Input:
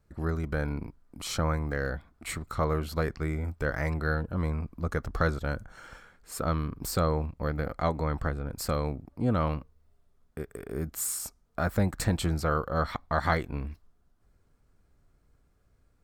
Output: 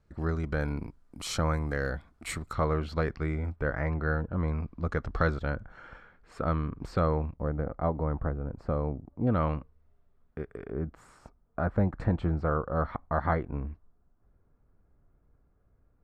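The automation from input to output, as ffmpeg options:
-af "asetnsamples=n=441:p=0,asendcmd='0.61 lowpass f 11000;2.53 lowpass f 4000;3.56 lowpass f 2000;4.48 lowpass f 4000;5.5 lowpass f 2400;7.36 lowpass f 1000;9.27 lowpass f 2400;10.7 lowpass f 1300',lowpass=6.2k"

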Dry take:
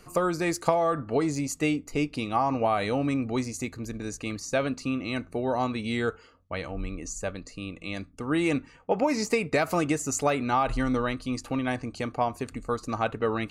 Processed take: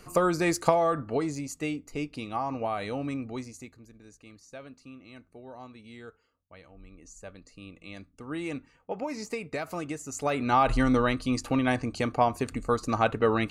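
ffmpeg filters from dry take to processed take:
-af "volume=22.5dB,afade=t=out:st=0.62:d=0.81:silence=0.421697,afade=t=out:st=3.16:d=0.71:silence=0.251189,afade=t=in:st=6.79:d=0.88:silence=0.354813,afade=t=in:st=10.13:d=0.51:silence=0.251189"

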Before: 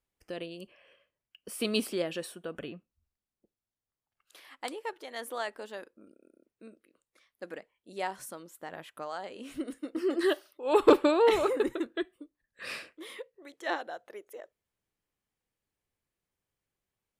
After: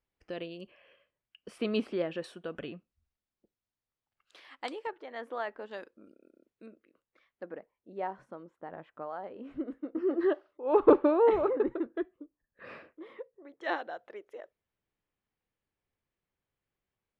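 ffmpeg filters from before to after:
-af "asetnsamples=n=441:p=0,asendcmd='1.58 lowpass f 2200;2.24 lowpass f 4700;4.87 lowpass f 2000;5.71 lowpass f 5100;6.66 lowpass f 2500;7.43 lowpass f 1200;13.61 lowpass f 3300',lowpass=3.7k"

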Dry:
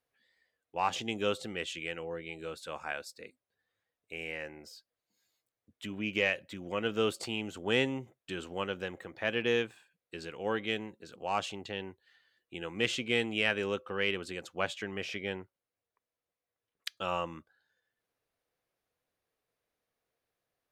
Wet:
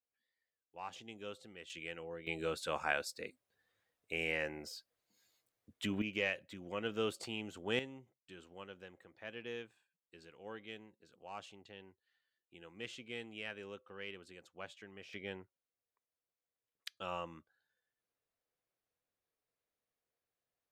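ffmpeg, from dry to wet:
-af "asetnsamples=n=441:p=0,asendcmd='1.7 volume volume -7dB;2.27 volume volume 3dB;6.02 volume volume -6.5dB;7.79 volume volume -15.5dB;15.13 volume volume -8dB',volume=-15.5dB"

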